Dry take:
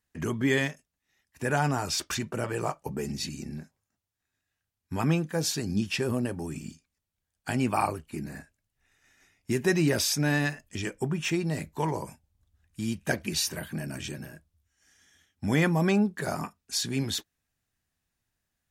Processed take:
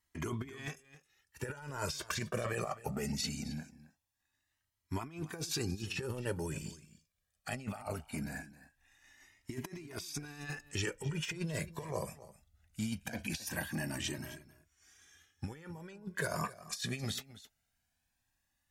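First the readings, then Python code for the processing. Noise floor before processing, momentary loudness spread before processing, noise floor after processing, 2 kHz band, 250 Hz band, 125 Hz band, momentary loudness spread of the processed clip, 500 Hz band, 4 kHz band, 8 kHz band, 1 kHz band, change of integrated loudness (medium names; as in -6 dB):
-85 dBFS, 14 LU, -83 dBFS, -9.5 dB, -12.0 dB, -9.5 dB, 12 LU, -10.5 dB, -8.5 dB, -8.5 dB, -11.0 dB, -10.5 dB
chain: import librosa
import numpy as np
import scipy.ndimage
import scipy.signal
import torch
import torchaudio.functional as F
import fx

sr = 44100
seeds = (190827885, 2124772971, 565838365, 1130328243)

y = fx.low_shelf(x, sr, hz=450.0, db=-4.5)
y = fx.over_compress(y, sr, threshold_db=-34.0, ratio=-0.5)
y = y + 10.0 ** (-17.0 / 20.0) * np.pad(y, (int(266 * sr / 1000.0), 0))[:len(y)]
y = fx.comb_cascade(y, sr, direction='rising', hz=0.21)
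y = F.gain(torch.from_numpy(y), 1.0).numpy()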